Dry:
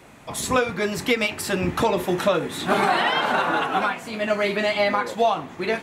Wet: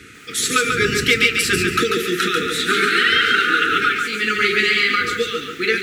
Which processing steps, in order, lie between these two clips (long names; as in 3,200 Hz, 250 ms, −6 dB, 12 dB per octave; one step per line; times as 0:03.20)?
wind on the microphone 90 Hz −26 dBFS
meter weighting curve A
downward compressor 6 to 1, threshold −19 dBFS, peak gain reduction 4 dB
linear-phase brick-wall band-stop 490–1,200 Hz
feedback echo at a low word length 141 ms, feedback 35%, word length 9 bits, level −4.5 dB
level +9 dB